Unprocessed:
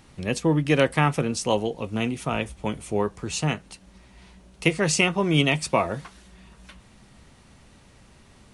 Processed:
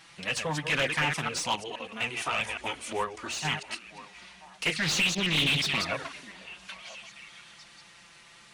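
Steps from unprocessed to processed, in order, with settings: chunks repeated in reverse 117 ms, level -9 dB; amplifier tone stack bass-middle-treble 5-5-5; 1.55–2.02 s: level held to a coarse grid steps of 10 dB; touch-sensitive flanger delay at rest 6.3 ms, full sweep at -29 dBFS; 4.76–5.92 s: ten-band graphic EQ 125 Hz +6 dB, 250 Hz +4 dB, 1 kHz -12 dB, 4 kHz +12 dB, 8 kHz -4 dB; overdrive pedal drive 29 dB, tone 2.6 kHz, clips at -12.5 dBFS; on a send: repeats whose band climbs or falls 492 ms, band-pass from 300 Hz, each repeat 1.4 oct, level -12 dB; 3.04–3.45 s: on the sum: compression, threshold -30 dBFS, peak gain reduction 5.5 dB; loudspeaker Doppler distortion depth 0.32 ms; trim -2 dB

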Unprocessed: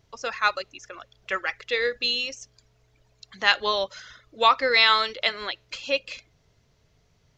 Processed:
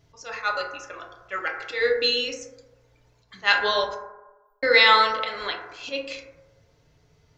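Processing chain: slow attack 105 ms; 3.94–4.63 s: inverse Chebyshev band-stop 100–5700 Hz, stop band 80 dB; FDN reverb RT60 1.1 s, low-frequency decay 0.75×, high-frequency decay 0.25×, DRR -0.5 dB

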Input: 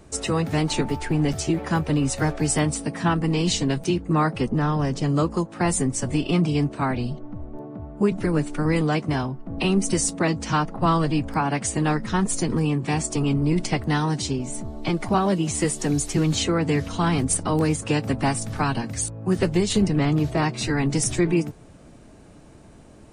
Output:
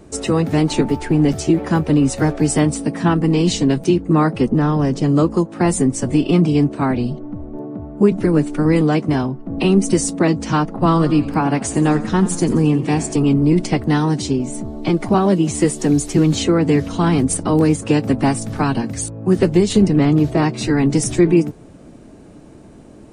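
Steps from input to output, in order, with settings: peaking EQ 300 Hz +7.5 dB 2 oct; 10.87–13.16 s: modulated delay 89 ms, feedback 54%, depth 98 cents, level -14.5 dB; trim +1.5 dB

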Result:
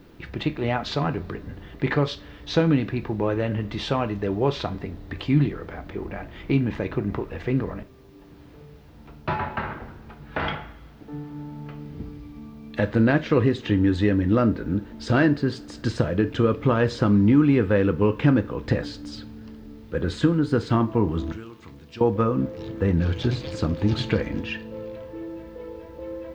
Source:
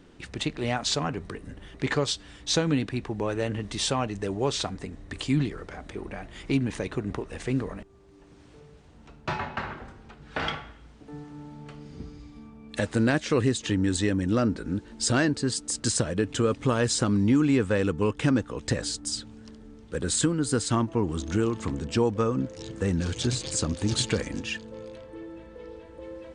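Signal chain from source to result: 21.32–22.01 s: pre-emphasis filter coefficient 0.9; added noise violet -47 dBFS; distance through air 310 m; reverberation, pre-delay 3 ms, DRR 8 dB; trim +4.5 dB

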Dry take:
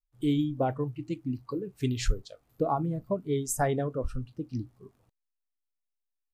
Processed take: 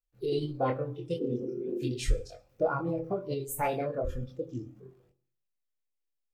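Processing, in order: reverberation RT60 0.50 s, pre-delay 3 ms, DRR 10 dB; spectral replace 1.23–1.88 s, 210–1300 Hz after; chorus voices 2, 0.38 Hz, delay 24 ms, depth 1.9 ms; formant shift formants +4 st; graphic EQ with 31 bands 500 Hz +8 dB, 1 kHz -4 dB, 2.5 kHz +5 dB, 10 kHz -6 dB

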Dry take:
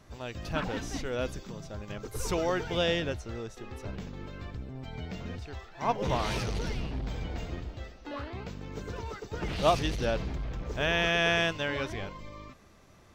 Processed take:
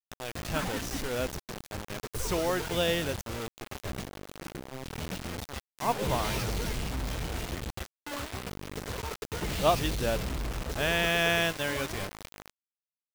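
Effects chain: bit crusher 6-bit; 4.08–4.73 s: ring modulator 250 Hz

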